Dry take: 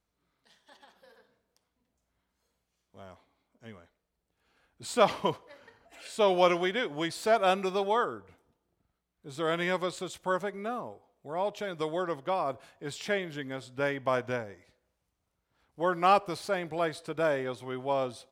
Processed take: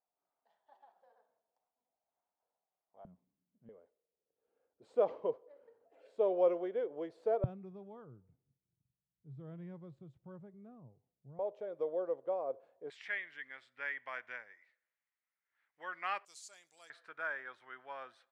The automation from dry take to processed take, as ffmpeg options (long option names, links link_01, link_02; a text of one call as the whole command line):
ffmpeg -i in.wav -af "asetnsamples=nb_out_samples=441:pad=0,asendcmd='3.05 bandpass f 180;3.69 bandpass f 480;7.44 bandpass f 130;11.39 bandpass f 510;12.9 bandpass f 1900;16.25 bandpass f 7100;16.9 bandpass f 1600',bandpass=frequency=750:width_type=q:width=4.3:csg=0" out.wav